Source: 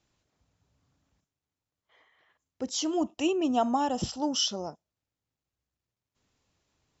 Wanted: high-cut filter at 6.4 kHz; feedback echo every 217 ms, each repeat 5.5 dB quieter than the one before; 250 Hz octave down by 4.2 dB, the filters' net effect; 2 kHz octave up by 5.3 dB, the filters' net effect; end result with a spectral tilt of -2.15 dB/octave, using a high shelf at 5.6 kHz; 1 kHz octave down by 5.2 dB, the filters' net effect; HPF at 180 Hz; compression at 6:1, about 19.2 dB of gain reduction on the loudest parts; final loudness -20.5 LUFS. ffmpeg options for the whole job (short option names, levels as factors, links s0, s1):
-af "highpass=180,lowpass=6400,equalizer=f=250:t=o:g=-4,equalizer=f=1000:t=o:g=-9,equalizer=f=2000:t=o:g=9,highshelf=f=5600:g=6.5,acompressor=threshold=0.00794:ratio=6,aecho=1:1:217|434|651|868|1085|1302|1519:0.531|0.281|0.149|0.079|0.0419|0.0222|0.0118,volume=13.3"